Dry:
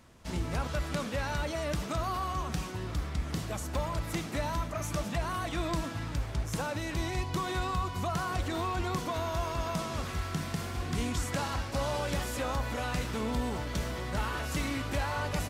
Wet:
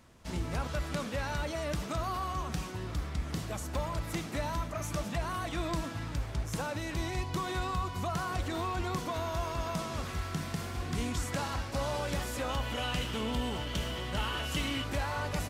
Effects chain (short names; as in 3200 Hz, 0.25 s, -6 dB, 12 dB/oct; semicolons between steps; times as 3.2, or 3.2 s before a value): 12.49–14.84 bell 3000 Hz +13.5 dB 0.25 oct; gain -1.5 dB